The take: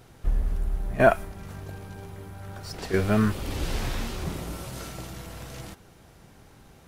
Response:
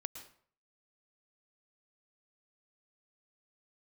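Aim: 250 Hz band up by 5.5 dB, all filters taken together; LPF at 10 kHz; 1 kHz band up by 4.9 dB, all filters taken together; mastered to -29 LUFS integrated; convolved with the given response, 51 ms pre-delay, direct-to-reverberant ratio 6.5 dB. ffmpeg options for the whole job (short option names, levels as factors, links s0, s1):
-filter_complex "[0:a]lowpass=10000,equalizer=f=250:t=o:g=6.5,equalizer=f=1000:t=o:g=7.5,asplit=2[s0][s1];[1:a]atrim=start_sample=2205,adelay=51[s2];[s1][s2]afir=irnorm=-1:irlink=0,volume=0.596[s3];[s0][s3]amix=inputs=2:normalize=0,volume=0.501"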